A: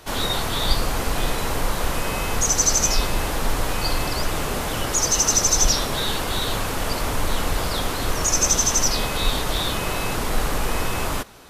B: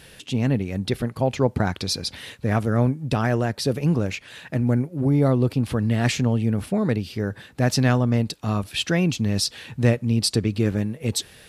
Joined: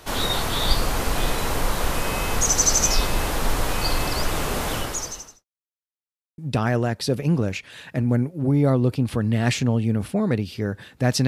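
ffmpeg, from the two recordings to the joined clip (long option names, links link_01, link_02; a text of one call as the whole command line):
ffmpeg -i cue0.wav -i cue1.wav -filter_complex "[0:a]apad=whole_dur=11.27,atrim=end=11.27,asplit=2[link_01][link_02];[link_01]atrim=end=5.45,asetpts=PTS-STARTPTS,afade=type=out:start_time=4.73:duration=0.72:curve=qua[link_03];[link_02]atrim=start=5.45:end=6.38,asetpts=PTS-STARTPTS,volume=0[link_04];[1:a]atrim=start=2.96:end=7.85,asetpts=PTS-STARTPTS,afade=type=in:duration=0.004:curve=hsin[link_05];[link_03][link_04][link_05]concat=n=3:v=0:a=1" out.wav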